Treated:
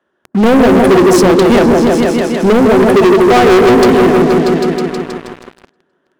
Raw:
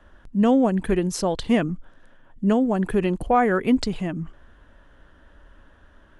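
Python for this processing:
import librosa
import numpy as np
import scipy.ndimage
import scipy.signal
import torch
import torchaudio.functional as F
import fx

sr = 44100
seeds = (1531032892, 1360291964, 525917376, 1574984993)

p1 = scipy.signal.sosfilt(scipy.signal.bessel(4, 190.0, 'highpass', norm='mag', fs=sr, output='sos'), x)
p2 = fx.peak_eq(p1, sr, hz=380.0, db=11.5, octaves=0.31)
p3 = fx.hum_notches(p2, sr, base_hz=50, count=6)
p4 = p3 + fx.echo_opening(p3, sr, ms=159, hz=750, octaves=1, feedback_pct=70, wet_db=-3, dry=0)
y = fx.leveller(p4, sr, passes=5)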